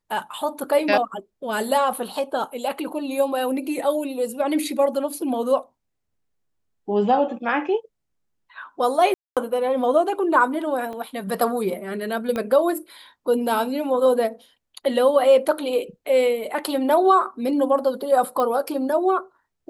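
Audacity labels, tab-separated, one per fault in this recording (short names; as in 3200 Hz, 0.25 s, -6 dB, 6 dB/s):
9.140000	9.370000	gap 0.227 s
10.930000	10.930000	gap 2.4 ms
12.360000	12.360000	pop -14 dBFS
18.400000	18.400000	pop -13 dBFS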